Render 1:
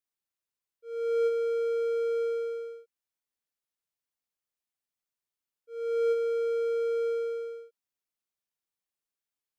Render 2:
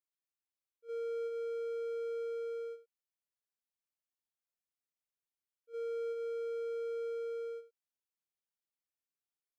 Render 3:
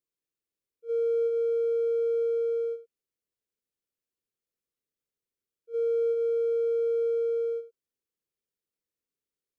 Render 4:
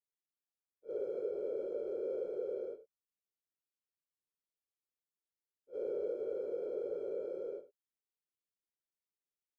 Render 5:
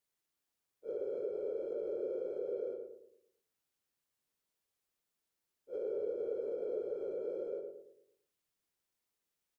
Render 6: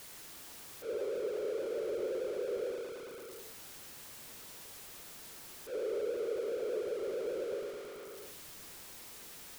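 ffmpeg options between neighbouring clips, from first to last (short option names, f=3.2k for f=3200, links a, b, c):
-af "agate=range=-7dB:threshold=-42dB:ratio=16:detection=peak,acompressor=threshold=-35dB:ratio=6,volume=-1.5dB"
-af "lowshelf=f=580:t=q:w=3:g=6.5"
-af "afftfilt=real='hypot(re,im)*cos(2*PI*random(0))':imag='hypot(re,im)*sin(2*PI*random(1))':win_size=512:overlap=0.75,volume=-6dB"
-filter_complex "[0:a]acompressor=threshold=-48dB:ratio=3,asplit=2[a][b];[b]adelay=111,lowpass=f=860:p=1,volume=-4dB,asplit=2[c][d];[d]adelay=111,lowpass=f=860:p=1,volume=0.47,asplit=2[e][f];[f]adelay=111,lowpass=f=860:p=1,volume=0.47,asplit=2[g][h];[h]adelay=111,lowpass=f=860:p=1,volume=0.47,asplit=2[i][j];[j]adelay=111,lowpass=f=860:p=1,volume=0.47,asplit=2[k][l];[l]adelay=111,lowpass=f=860:p=1,volume=0.47[m];[a][c][e][g][i][k][m]amix=inputs=7:normalize=0,volume=8dB"
-af "aeval=exprs='val(0)+0.5*0.00841*sgn(val(0))':c=same"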